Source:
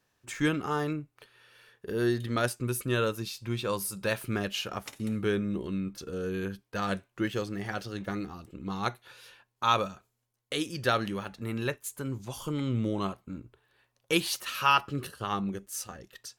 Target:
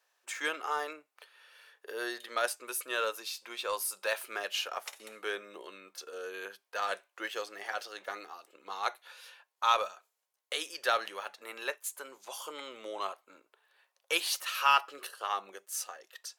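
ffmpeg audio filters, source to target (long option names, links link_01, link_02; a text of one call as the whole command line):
ffmpeg -i in.wav -filter_complex "[0:a]highpass=frequency=540:width=0.5412,highpass=frequency=540:width=1.3066,asplit=2[link_01][link_02];[link_02]volume=29.5dB,asoftclip=hard,volume=-29.5dB,volume=-10dB[link_03];[link_01][link_03]amix=inputs=2:normalize=0,volume=-2dB" out.wav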